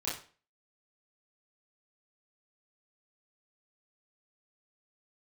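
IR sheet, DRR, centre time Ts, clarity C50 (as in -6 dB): -9.0 dB, 38 ms, 5.5 dB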